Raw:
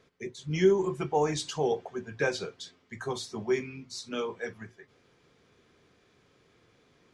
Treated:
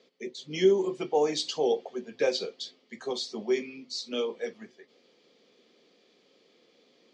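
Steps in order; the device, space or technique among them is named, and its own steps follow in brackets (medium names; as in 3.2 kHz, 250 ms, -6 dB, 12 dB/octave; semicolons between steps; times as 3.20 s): television speaker (cabinet simulation 220–7400 Hz, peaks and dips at 220 Hz +4 dB, 520 Hz +6 dB, 1 kHz -6 dB, 1.5 kHz -10 dB, 3.2 kHz +5 dB, 4.5 kHz +8 dB)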